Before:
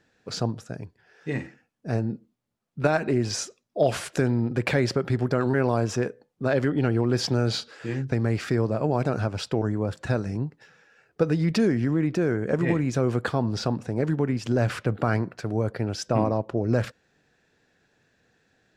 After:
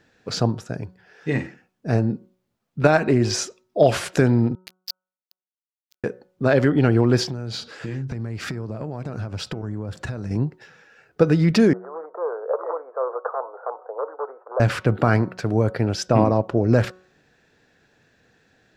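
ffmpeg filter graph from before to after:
-filter_complex "[0:a]asettb=1/sr,asplit=3[s0][s1][s2];[s0]atrim=end=4.554[s3];[s1]atrim=start=4.55:end=6.04,asetpts=PTS-STARTPTS,afade=t=in:d=0.004:c=qsin,afade=t=out:st=1.486:d=0.004:c=qsin,bandpass=f=4600:t=q:w=5.5,acrusher=bits=4:mix=0:aa=0.5[s4];[s2]atrim=start=6.036[s5];[s3][s4]acrossfade=d=0.004:c1=hsin:c2=qsin[s6];[s6][s5]acrossfade=d=0.004:c1=qsin:c2=hsin,asettb=1/sr,asplit=3[s7][s8][s9];[s7]atrim=end=7.234[s10];[s8]atrim=start=7.23:end=10.31,asetpts=PTS-STARTPTS,afade=t=in:d=0.004:c=qsin,afade=t=out:st=3.076:d=0.004:c=qsin,bass=f=250:g=5,treble=f=4000:g=2,acompressor=threshold=0.0282:ratio=12:attack=3.2:release=140:knee=1:detection=peak[s11];[s9]atrim=start=10.306[s12];[s10][s11]acrossfade=d=0.004:c1=hsin:c2=qsin[s13];[s13][s12]acrossfade=d=0.004:c1=qsin:c2=hsin,asettb=1/sr,asplit=3[s14][s15][s16];[s14]atrim=end=11.734[s17];[s15]atrim=start=11.73:end=14.6,asetpts=PTS-STARTPTS,afade=t=in:d=0.004:c=qsin,afade=t=out:st=2.866:d=0.004:c=qsin,aeval=exprs='0.158*(abs(mod(val(0)/0.158+3,4)-2)-1)':c=same,asuperpass=centerf=780:order=12:qfactor=0.89[s18];[s16]atrim=start=14.596[s19];[s17][s18]acrossfade=d=0.004:c1=hsin:c2=qsin[s20];[s20][s19]acrossfade=d=0.004:c1=qsin:c2=hsin,equalizer=f=9300:t=o:w=0.95:g=-3.5,bandreject=f=184.9:t=h:w=4,bandreject=f=369.8:t=h:w=4,bandreject=f=554.7:t=h:w=4,bandreject=f=739.6:t=h:w=4,bandreject=f=924.5:t=h:w=4,bandreject=f=1109.4:t=h:w=4,bandreject=f=1294.3:t=h:w=4,bandreject=f=1479.2:t=h:w=4,volume=2"

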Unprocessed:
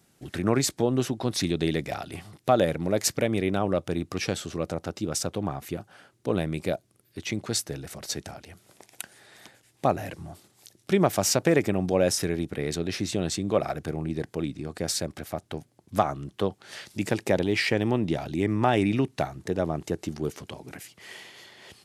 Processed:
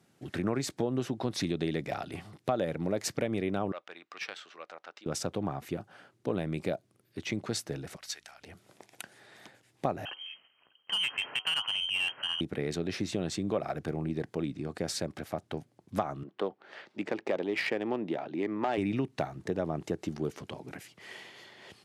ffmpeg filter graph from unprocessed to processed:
-filter_complex "[0:a]asettb=1/sr,asplit=3[s0][s1][s2];[s0]atrim=end=3.724[s3];[s1]atrim=start=3.72:end=5.06,asetpts=PTS-STARTPTS,afade=t=in:d=0.004:c=qsin,afade=t=out:st=1.336:d=0.004:c=qsin,highpass=1300,adynamicsmooth=sensitivity=2:basefreq=3400[s4];[s2]atrim=start=5.056[s5];[s3][s4]acrossfade=d=0.004:c1=hsin:c2=qsin[s6];[s6][s5]acrossfade=d=0.004:c1=qsin:c2=hsin,asettb=1/sr,asplit=3[s7][s8][s9];[s7]atrim=end=7.964[s10];[s8]atrim=start=7.96:end=8.42,asetpts=PTS-STARTPTS,afade=t=in:d=0.004:c=qsin,afade=t=out:st=0.456:d=0.004:c=qsin,highpass=1500,aeval=exprs='val(0)+0.000398*(sin(2*PI*60*n/s)+sin(2*PI*2*60*n/s)/2+sin(2*PI*3*60*n/s)/3+sin(2*PI*4*60*n/s)/4+sin(2*PI*5*60*n/s)/5)':c=same[s11];[s9]atrim=start=8.416[s12];[s10][s11]acrossfade=d=0.004:c1=hsin:c2=qsin[s13];[s13][s12]acrossfade=d=0.004:c1=qsin:c2=hsin,asettb=1/sr,asplit=3[s14][s15][s16];[s14]atrim=end=10.054[s17];[s15]atrim=start=10.05:end=12.41,asetpts=PTS-STARTPTS,afade=t=in:d=0.004:c=qsin,afade=t=out:st=2.356:d=0.004:c=qsin,lowpass=f=2800:t=q:w=0.5098,lowpass=f=2800:t=q:w=0.6013,lowpass=f=2800:t=q:w=0.9,lowpass=f=2800:t=q:w=2.563,afreqshift=-3300,bandreject=f=106.8:t=h:w=4,bandreject=f=213.6:t=h:w=4,bandreject=f=320.4:t=h:w=4,bandreject=f=427.2:t=h:w=4,bandreject=f=534:t=h:w=4,bandreject=f=640.8:t=h:w=4,bandreject=f=747.6:t=h:w=4,bandreject=f=854.4:t=h:w=4,bandreject=f=961.2:t=h:w=4,bandreject=f=1068:t=h:w=4,bandreject=f=1174.8:t=h:w=4,bandreject=f=1281.6:t=h:w=4,bandreject=f=1388.4:t=h:w=4,bandreject=f=1495.2:t=h:w=4,aeval=exprs='(tanh(10*val(0)+0.1)-tanh(0.1))/10':c=same[s18];[s16]atrim=start=12.406[s19];[s17][s18]acrossfade=d=0.004:c1=hsin:c2=qsin[s20];[s20][s19]acrossfade=d=0.004:c1=qsin:c2=hsin,asettb=1/sr,asplit=3[s21][s22][s23];[s21]atrim=end=16.234[s24];[s22]atrim=start=16.23:end=18.78,asetpts=PTS-STARTPTS,afade=t=in:d=0.004:c=qsin,afade=t=out:st=2.546:d=0.004:c=qsin,highpass=310,volume=6.68,asoftclip=hard,volume=0.15,adynamicsmooth=sensitivity=2.5:basefreq=2300[s25];[s23]atrim=start=18.776[s26];[s24][s25]acrossfade=d=0.004:c1=hsin:c2=qsin[s27];[s27][s26]acrossfade=d=0.004:c1=qsin:c2=hsin,highpass=100,aemphasis=mode=reproduction:type=cd,acompressor=threshold=0.0501:ratio=3,volume=0.841"

